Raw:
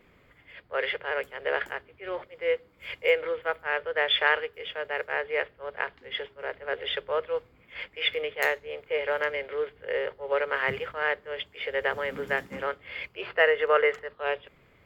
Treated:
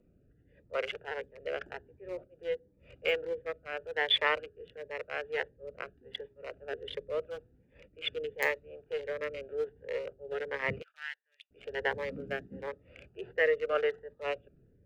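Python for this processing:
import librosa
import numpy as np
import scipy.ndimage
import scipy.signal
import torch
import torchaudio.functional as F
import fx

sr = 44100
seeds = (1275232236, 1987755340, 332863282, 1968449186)

y = fx.wiener(x, sr, points=41)
y = fx.rotary(y, sr, hz=0.9)
y = fx.bessel_highpass(y, sr, hz=2400.0, order=4, at=(10.82, 11.51))
y = fx.notch_cascade(y, sr, direction='rising', hz=1.4)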